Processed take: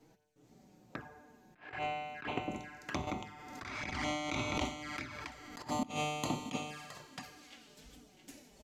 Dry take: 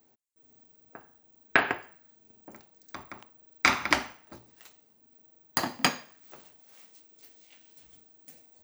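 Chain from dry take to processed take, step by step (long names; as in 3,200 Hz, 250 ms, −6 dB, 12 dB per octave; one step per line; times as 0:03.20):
low-pass filter 8,500 Hz 12 dB per octave
low-shelf EQ 220 Hz +11.5 dB
mains-hum notches 50/100/150 Hz
tuned comb filter 150 Hz, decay 1.5 s, mix 80%
repeating echo 666 ms, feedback 17%, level −11 dB
compressor whose output falls as the input rises −49 dBFS, ratio −0.5
flanger swept by the level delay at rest 7.8 ms, full sweep at −48 dBFS
rectangular room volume 3,300 cubic metres, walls furnished, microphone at 0.38 metres
0:03.07–0:05.62: background raised ahead of every attack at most 29 dB per second
level +13 dB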